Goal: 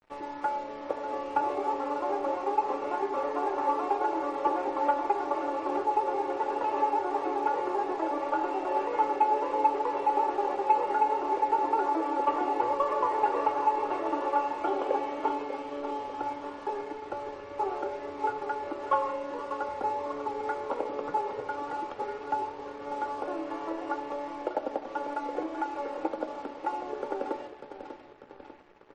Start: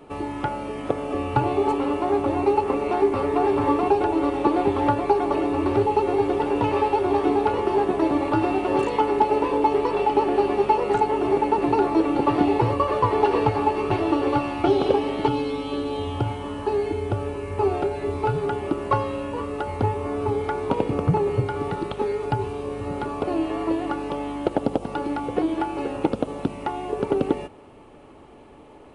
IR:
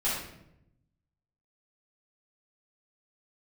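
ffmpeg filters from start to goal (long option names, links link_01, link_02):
-filter_complex "[0:a]lowpass=frequency=6000:width=0.5412,lowpass=frequency=6000:width=1.3066,acrossover=split=330 2100:gain=0.178 1 0.0891[link_01][link_02][link_03];[link_01][link_02][link_03]amix=inputs=3:normalize=0,aecho=1:1:3.6:0.44,aecho=1:1:594|1188|1782|2376|2970|3564|4158:0.282|0.166|0.0981|0.0579|0.0342|0.0201|0.0119,acrossover=split=310|1100[link_04][link_05][link_06];[link_04]acompressor=threshold=-45dB:ratio=12[link_07];[link_07][link_05][link_06]amix=inputs=3:normalize=0,aeval=exprs='sgn(val(0))*max(abs(val(0))-0.00562,0)':channel_layout=same,flanger=delay=7.9:depth=8.5:regen=87:speed=0.12:shape=sinusoidal,asoftclip=type=tanh:threshold=-12.5dB,asplit=2[link_08][link_09];[1:a]atrim=start_sample=2205,afade=type=out:start_time=0.28:duration=0.01,atrim=end_sample=12789[link_10];[link_09][link_10]afir=irnorm=-1:irlink=0,volume=-16dB[link_11];[link_08][link_11]amix=inputs=2:normalize=0,acontrast=20,volume=-5.5dB" -ar 48000 -c:a libmp3lame -b:a 40k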